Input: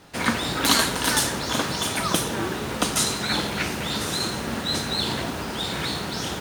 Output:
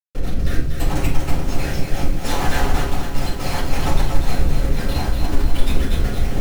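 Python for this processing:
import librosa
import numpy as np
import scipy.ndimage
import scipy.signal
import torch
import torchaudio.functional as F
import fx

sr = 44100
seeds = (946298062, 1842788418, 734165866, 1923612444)

y = fx.spec_dropout(x, sr, seeds[0], share_pct=71)
y = fx.high_shelf(y, sr, hz=7400.0, db=11.0, at=(1.77, 4.2))
y = y + 0.64 * np.pad(y, (int(7.0 * sr / 1000.0), 0))[:len(y)]
y = fx.dynamic_eq(y, sr, hz=1000.0, q=2.0, threshold_db=-45.0, ratio=4.0, max_db=-6)
y = fx.over_compress(y, sr, threshold_db=-33.0, ratio=-0.5)
y = fx.schmitt(y, sr, flips_db=-27.5)
y = fx.rotary(y, sr, hz=0.7)
y = y + 10.0 ** (-6.5 / 20.0) * np.pad(y, (int(237 * sr / 1000.0), 0))[:len(y)]
y = fx.room_shoebox(y, sr, seeds[1], volume_m3=260.0, walls='furnished', distance_m=7.0)
y = fx.echo_crushed(y, sr, ms=250, feedback_pct=80, bits=6, wet_db=-11.5)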